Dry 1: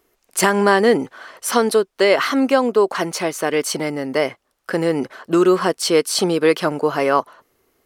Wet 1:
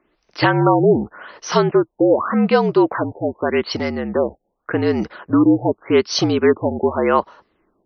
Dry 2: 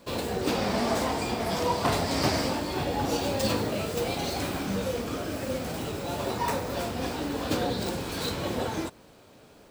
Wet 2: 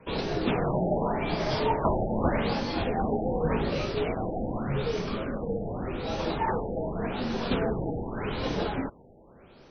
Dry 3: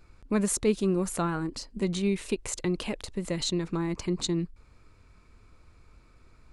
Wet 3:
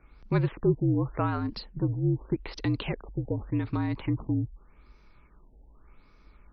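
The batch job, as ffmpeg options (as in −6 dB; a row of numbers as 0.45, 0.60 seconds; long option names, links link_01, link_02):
-af "afreqshift=-57,afftfilt=real='re*lt(b*sr/1024,850*pow(6400/850,0.5+0.5*sin(2*PI*0.85*pts/sr)))':imag='im*lt(b*sr/1024,850*pow(6400/850,0.5+0.5*sin(2*PI*0.85*pts/sr)))':win_size=1024:overlap=0.75,volume=1dB"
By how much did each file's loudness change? +0.5, 0.0, 0.0 LU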